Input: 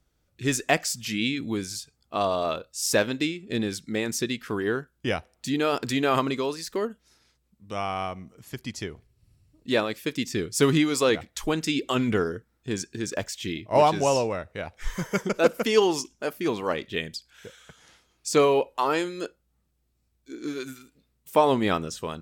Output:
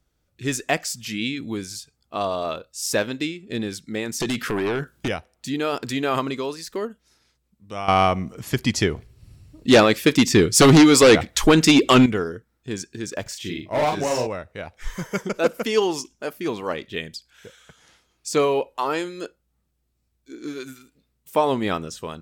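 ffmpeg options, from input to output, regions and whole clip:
-filter_complex "[0:a]asettb=1/sr,asplit=3[a][b][c];[a]atrim=end=4.204[d];[b]atrim=start=4.2:end=5.08,asetpts=PTS-STARTPTS,afade=t=in:d=0.004:c=qsin,afade=t=out:st=0.876:d=0.004:c=qsin,highpass=f=69:w=0.5412,highpass=f=69:w=1.3066,acompressor=threshold=-30dB:ratio=5:attack=3.2:release=140:knee=1:detection=peak,aeval=exprs='0.106*sin(PI/2*3.16*val(0)/0.106)':c=same[e];[c]atrim=start=5.076[f];[d][e]acrossfade=d=0.004:c1=hsin:c2=qsin[g];[g][f]acrossfade=d=0.004:c1=qsin:c2=hsin,asettb=1/sr,asplit=3[h][i][j];[h]atrim=end=7.884[k];[i]atrim=start=7.88:end=12.06,asetpts=PTS-STARTPTS,afade=t=in:d=0.004:c=qsin,afade=t=out:st=4.176:d=0.004:c=qsin,highshelf=f=9k:g=-5,aeval=exprs='0.447*sin(PI/2*3.16*val(0)/0.447)':c=same[l];[j]atrim=start=12.056[m];[k][l]acrossfade=d=0.004:c1=hsin:c2=qsin[n];[n][m]acrossfade=d=0.004:c1=qsin:c2=hsin,asettb=1/sr,asplit=3[o][p][q];[o]atrim=end=13.224[r];[p]atrim=start=13.22:end=14.27,asetpts=PTS-STARTPTS,afade=t=in:d=0.004:c=qsin,afade=t=out:st=1.046:d=0.004:c=qsin,asoftclip=type=hard:threshold=-19.5dB,asplit=2[s][t];[t]adelay=40,volume=-4dB[u];[s][u]amix=inputs=2:normalize=0,atrim=end_sample=46305[v];[q]atrim=start=14.266[w];[r][v]acrossfade=d=0.004:c1=hsin:c2=qsin[x];[x][w]acrossfade=d=0.004:c1=qsin:c2=hsin"

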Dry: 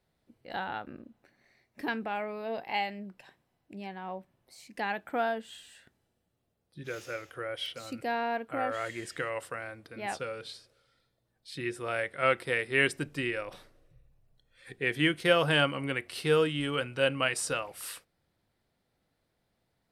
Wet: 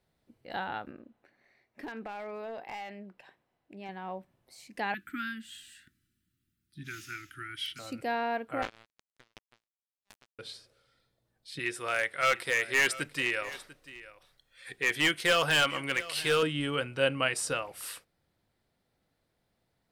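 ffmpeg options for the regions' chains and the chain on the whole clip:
-filter_complex "[0:a]asettb=1/sr,asplit=3[a][b][c];[a]atrim=end=0.914[d];[b]atrim=start=0.91:end=3.89,asetpts=PTS-STARTPTS,afade=t=in:d=0.004:c=qsin,afade=t=out:st=2.976:d=0.004:c=qsin,bass=f=250:g=-7,treble=f=4k:g=-8,acompressor=threshold=-35dB:ratio=10:attack=3.2:release=140:knee=1:detection=peak,aeval=exprs='clip(val(0),-1,0.0168)':c=same[e];[c]atrim=start=3.886[f];[d][e]acrossfade=d=0.004:c1=hsin:c2=qsin[g];[g][f]acrossfade=d=0.004:c1=qsin:c2=hsin,asettb=1/sr,asplit=3[h][i][j];[h]atrim=end=4.944[k];[i]atrim=start=4.94:end=7.79,asetpts=PTS-STARTPTS,afade=t=in:d=0.004:c=qsin,afade=t=out:st=2.846:d=0.004:c=qsin,asuperstop=centerf=660:order=12:qfactor=0.7,highshelf=f=11k:g=6.5[l];[j]atrim=start=7.786[m];[k][l]acrossfade=d=0.004:c1=hsin:c2=qsin[n];[n][m]acrossfade=d=0.004:c1=qsin:c2=hsin,asettb=1/sr,asplit=3[o][p][q];[o]atrim=end=8.624[r];[p]atrim=start=8.62:end=10.39,asetpts=PTS-STARTPTS,afade=t=in:d=0.004:c=qsin,afade=t=out:st=1.766:d=0.004:c=qsin,acrusher=bits=3:mix=0:aa=0.5,aeval=exprs='val(0)*pow(10,-40*if(lt(mod(2.7*n/s,1),2*abs(2.7)/1000),1-mod(2.7*n/s,1)/(2*abs(2.7)/1000),(mod(2.7*n/s,1)-2*abs(2.7)/1000)/(1-2*abs(2.7)/1000))/20)':c=same[s];[q]atrim=start=10.386[t];[r][s]acrossfade=d=0.004:c1=hsin:c2=qsin[u];[u][t]acrossfade=d=0.004:c1=qsin:c2=hsin,asettb=1/sr,asplit=3[v][w][x];[v]atrim=end=11.594[y];[w]atrim=start=11.59:end=16.43,asetpts=PTS-STARTPTS,afade=t=in:d=0.004:c=qsin,afade=t=out:st=4.836:d=0.004:c=qsin,tiltshelf=f=690:g=-6.5,asoftclip=type=hard:threshold=-19.5dB,aecho=1:1:694:0.133,atrim=end_sample=213444[z];[x]atrim=start=16.426[aa];[y][z]acrossfade=d=0.004:c1=hsin:c2=qsin[ab];[ab][aa]acrossfade=d=0.004:c1=qsin:c2=hsin"

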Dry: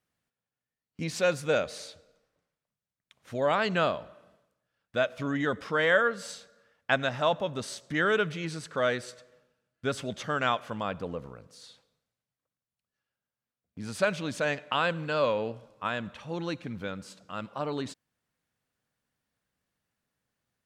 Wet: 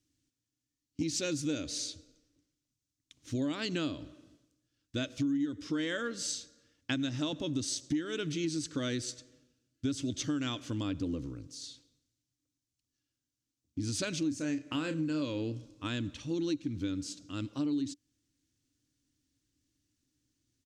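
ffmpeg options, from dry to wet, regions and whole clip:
-filter_complex "[0:a]asettb=1/sr,asplit=3[a][b][c];[a]atrim=end=14.194[d];[b]atrim=start=14.19:end=15.22,asetpts=PTS-STARTPTS,afade=t=in:d=0.004:c=qsin,afade=t=out:st=1.026:d=0.004:c=qsin,equalizer=f=3.5k:t=o:w=0.62:g=-11.5,asplit=2[e][f];[f]adelay=32,volume=-9dB[g];[e][g]amix=inputs=2:normalize=0,atrim=end_sample=45423[h];[c]atrim=start=15.216[i];[d][h]acrossfade=d=0.004:c1=hsin:c2=qsin[j];[j][i]acrossfade=d=0.004:c1=qsin:c2=hsin,firequalizer=gain_entry='entry(110,0);entry(200,-13);entry(290,10);entry(410,-12);entry(710,-22);entry(3100,-6);entry(6200,3);entry(11000,-10)':delay=0.05:min_phase=1,acompressor=threshold=-37dB:ratio=8,volume=7.5dB"

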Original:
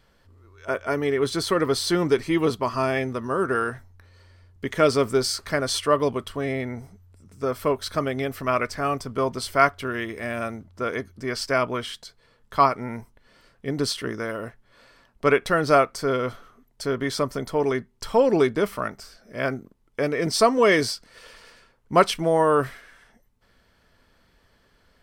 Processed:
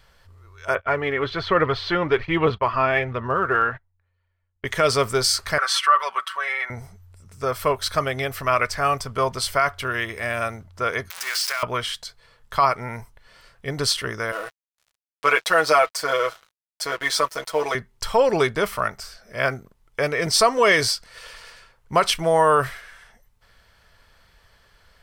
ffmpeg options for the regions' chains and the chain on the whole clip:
-filter_complex "[0:a]asettb=1/sr,asplit=3[a][b][c];[a]atrim=end=0.754[d];[b]atrim=start=0.75:end=4.65,asetpts=PTS-STARTPTS,afade=t=in:d=0.004:c=qsin,afade=t=out:st=3.896:d=0.004:c=qsin,agate=range=-26dB:threshold=-39dB:ratio=16:release=100:detection=peak,lowpass=f=3.2k:w=0.5412,lowpass=f=3.2k:w=1.3066,aphaser=in_gain=1:out_gain=1:delay=3.7:decay=0.32:speed=1.2:type=sinusoidal[e];[c]atrim=start=4.646[f];[d][e]acrossfade=d=0.004:c1=hsin:c2=qsin[g];[g][f]acrossfade=d=0.004:c1=qsin:c2=hsin,asettb=1/sr,asplit=3[h][i][j];[h]atrim=end=5.584[k];[i]atrim=start=5.58:end=6.7,asetpts=PTS-STARTPTS,afade=t=in:d=0.004:c=qsin,afade=t=out:st=1.116:d=0.004:c=qsin,highpass=f=1.3k:t=q:w=2.2,highshelf=f=3.6k:g=-10,aecho=1:1:5.3:1,atrim=end_sample=49392[l];[j]atrim=start=6.696[m];[k][l]acrossfade=d=0.004:c1=hsin:c2=qsin[n];[n][m]acrossfade=d=0.004:c1=qsin:c2=hsin,asettb=1/sr,asplit=3[o][p][q];[o]atrim=end=11.104[r];[p]atrim=start=11.1:end=11.63,asetpts=PTS-STARTPTS,afade=t=in:d=0.004:c=qsin,afade=t=out:st=0.526:d=0.004:c=qsin,aeval=exprs='val(0)+0.5*0.0501*sgn(val(0))':c=same,highpass=1.3k,acompressor=threshold=-27dB:ratio=6:attack=3.2:release=140:knee=1:detection=peak[s];[q]atrim=start=11.626[t];[r][s]acrossfade=d=0.004:c1=hsin:c2=qsin[u];[u][t]acrossfade=d=0.004:c1=qsin:c2=hsin,asettb=1/sr,asplit=3[v][w][x];[v]atrim=end=14.324[y];[w]atrim=start=14.32:end=17.75,asetpts=PTS-STARTPTS,afade=t=in:d=0.004:c=qsin,afade=t=out:st=3.426:d=0.004:c=qsin,highpass=360,aecho=1:1:6.2:0.89,atrim=end_sample=151263,aeval=exprs='sgn(val(0))*max(abs(val(0))-0.00562,0)':c=same[z];[x]atrim=start=17.746[aa];[y][z]acrossfade=d=0.004:c1=hsin:c2=qsin[ab];[ab][aa]acrossfade=d=0.004:c1=qsin:c2=hsin,equalizer=f=270:t=o:w=1.4:g=-13.5,alimiter=level_in=12.5dB:limit=-1dB:release=50:level=0:latency=1,volume=-6dB"

